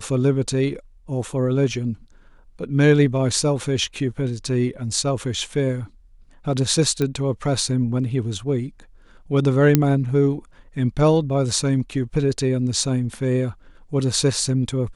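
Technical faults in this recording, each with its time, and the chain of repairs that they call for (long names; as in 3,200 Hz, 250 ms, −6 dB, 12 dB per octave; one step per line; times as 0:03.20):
0:07.02: click −11 dBFS
0:09.75: click −1 dBFS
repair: click removal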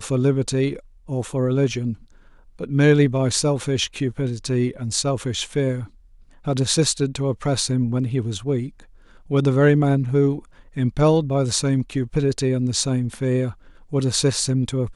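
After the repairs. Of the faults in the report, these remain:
none of them is left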